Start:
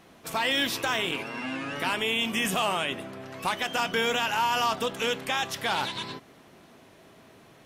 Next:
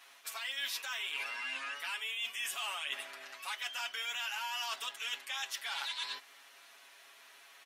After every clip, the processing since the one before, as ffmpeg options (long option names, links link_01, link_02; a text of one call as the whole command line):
ffmpeg -i in.wav -af "highpass=1500,aecho=1:1:7.2:0.99,areverse,acompressor=threshold=-36dB:ratio=6,areverse" out.wav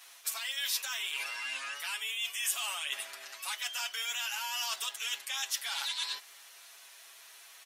ffmpeg -i in.wav -af "bass=frequency=250:gain=-14,treble=frequency=4000:gain=10" out.wav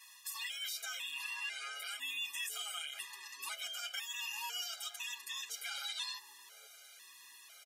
ffmpeg -i in.wav -filter_complex "[0:a]alimiter=level_in=4dB:limit=-24dB:level=0:latency=1:release=50,volume=-4dB,acrossover=split=700[link_01][link_02];[link_01]adelay=480[link_03];[link_03][link_02]amix=inputs=2:normalize=0,afftfilt=real='re*gt(sin(2*PI*1*pts/sr)*(1-2*mod(floor(b*sr/1024/410),2)),0)':imag='im*gt(sin(2*PI*1*pts/sr)*(1-2*mod(floor(b*sr/1024/410),2)),0)':win_size=1024:overlap=0.75" out.wav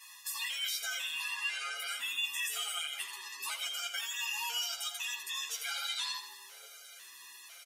ffmpeg -i in.wav -filter_complex "[0:a]asplit=2[link_01][link_02];[link_02]adelay=13,volume=-3.5dB[link_03];[link_01][link_03]amix=inputs=2:normalize=0,asplit=2[link_04][link_05];[link_05]aecho=0:1:84|168|252|336|420:0.282|0.132|0.0623|0.0293|0.0138[link_06];[link_04][link_06]amix=inputs=2:normalize=0,volume=3dB" out.wav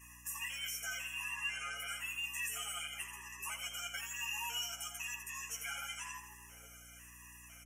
ffmpeg -i in.wav -af "aeval=exprs='val(0)+0.00141*(sin(2*PI*60*n/s)+sin(2*PI*2*60*n/s)/2+sin(2*PI*3*60*n/s)/3+sin(2*PI*4*60*n/s)/4+sin(2*PI*5*60*n/s)/5)':channel_layout=same,volume=26.5dB,asoftclip=hard,volume=-26.5dB,asuperstop=centerf=4100:order=12:qfactor=1.7,volume=-3dB" out.wav